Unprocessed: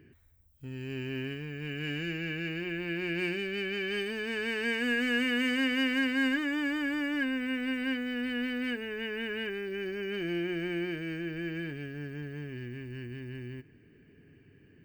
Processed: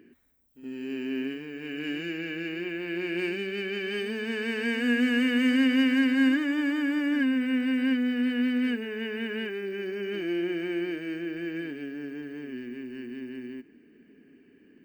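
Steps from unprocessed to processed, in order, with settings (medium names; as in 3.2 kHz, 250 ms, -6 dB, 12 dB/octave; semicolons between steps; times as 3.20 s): resonant low shelf 170 Hz -11.5 dB, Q 3; reverse echo 72 ms -11.5 dB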